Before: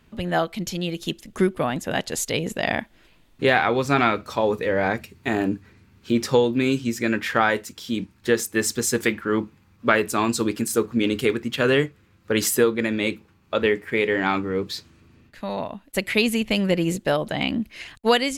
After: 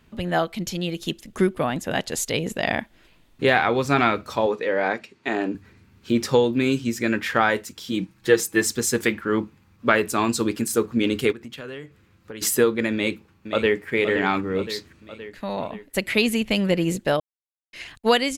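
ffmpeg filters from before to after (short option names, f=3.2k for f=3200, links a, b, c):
-filter_complex "[0:a]asettb=1/sr,asplit=3[a][b][c];[a]atrim=end=4.464[d];[b]atrim=start=4.46:end=5.55,asetpts=PTS-STARTPTS,afade=t=in:d=0.004:c=qsin,afade=t=out:st=1.086:d=0.004:c=qsin,highpass=280,lowpass=5.8k[e];[c]atrim=start=5.546[f];[d][e]acrossfade=d=0.004:c1=hsin:c2=qsin[g];[g][f]acrossfade=d=0.004:c1=qsin:c2=hsin,asettb=1/sr,asplit=3[h][i][j];[h]atrim=end=7.914[k];[i]atrim=start=7.91:end=8.64,asetpts=PTS-STARTPTS,afade=t=in:d=0.004:c=qsin,afade=t=out:st=0.726:d=0.004:c=qsin,aecho=1:1:6.2:0.65,atrim=end_sample=32193[l];[j]atrim=start=8.636[m];[k][l]acrossfade=d=0.004:c1=hsin:c2=qsin[n];[n][m]acrossfade=d=0.004:c1=qsin:c2=hsin,asplit=3[o][p][q];[o]afade=t=out:st=11.31:d=0.02[r];[p]acompressor=threshold=-36dB:ratio=4:attack=3.2:release=140:knee=1:detection=peak,afade=t=in:st=11.31:d=0.02,afade=t=out:st=12.41:d=0.02[s];[q]afade=t=in:st=12.41:d=0.02[t];[r][s][t]amix=inputs=3:normalize=0,asplit=2[u][v];[v]afade=t=in:st=12.93:d=0.01,afade=t=out:st=13.88:d=0.01,aecho=0:1:520|1040|1560|2080|2600|3120|3640:0.354813|0.212888|0.127733|0.0766397|0.0459838|0.0275903|0.0165542[w];[u][w]amix=inputs=2:normalize=0,asplit=3[x][y][z];[x]atrim=end=17.2,asetpts=PTS-STARTPTS,afade=t=out:st=17.196:d=0.004:c=hsin[aa];[y]atrim=start=17.2:end=17.73,asetpts=PTS-STARTPTS,volume=0[ab];[z]atrim=start=17.73,asetpts=PTS-STARTPTS,afade=t=in:d=0.004:c=hsin[ac];[aa][ab][ac]concat=n=3:v=0:a=1"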